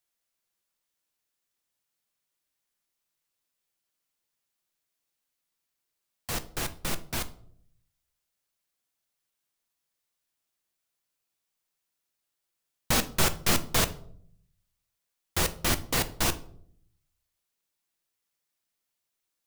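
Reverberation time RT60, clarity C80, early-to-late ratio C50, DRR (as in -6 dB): 0.65 s, 20.5 dB, 16.5 dB, 9.5 dB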